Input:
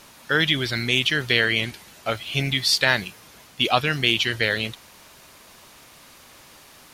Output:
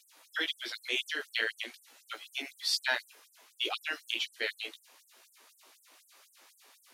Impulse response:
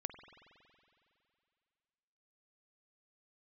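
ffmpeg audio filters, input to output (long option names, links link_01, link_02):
-af "flanger=delay=15.5:depth=3.2:speed=0.42,afftfilt=real='re*gte(b*sr/1024,230*pow(7900/230,0.5+0.5*sin(2*PI*4*pts/sr)))':imag='im*gte(b*sr/1024,230*pow(7900/230,0.5+0.5*sin(2*PI*4*pts/sr)))':win_size=1024:overlap=0.75,volume=-7.5dB"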